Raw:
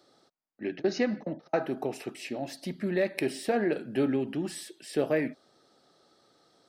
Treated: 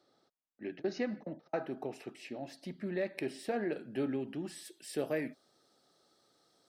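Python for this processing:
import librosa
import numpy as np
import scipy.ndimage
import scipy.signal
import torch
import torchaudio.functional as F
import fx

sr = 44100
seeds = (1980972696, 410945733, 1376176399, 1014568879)

y = fx.high_shelf(x, sr, hz=6700.0, db=fx.steps((0.0, -7.5), (3.38, -2.0), (4.64, 10.5)))
y = F.gain(torch.from_numpy(y), -7.5).numpy()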